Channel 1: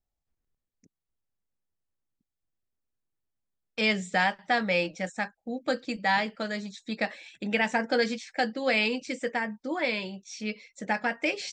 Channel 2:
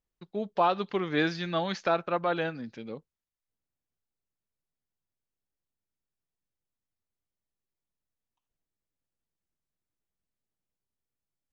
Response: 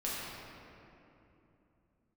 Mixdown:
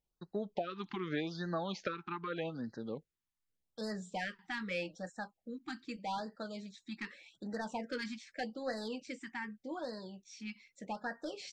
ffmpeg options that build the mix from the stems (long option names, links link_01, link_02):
-filter_complex "[0:a]asoftclip=type=tanh:threshold=-19dB,volume=-9.5dB[link_01];[1:a]acompressor=threshold=-32dB:ratio=5,volume=-1dB[link_02];[link_01][link_02]amix=inputs=2:normalize=0,highshelf=frequency=5700:gain=-4,afftfilt=real='re*(1-between(b*sr/1024,520*pow(2800/520,0.5+0.5*sin(2*PI*0.83*pts/sr))/1.41,520*pow(2800/520,0.5+0.5*sin(2*PI*0.83*pts/sr))*1.41))':imag='im*(1-between(b*sr/1024,520*pow(2800/520,0.5+0.5*sin(2*PI*0.83*pts/sr))/1.41,520*pow(2800/520,0.5+0.5*sin(2*PI*0.83*pts/sr))*1.41))':win_size=1024:overlap=0.75"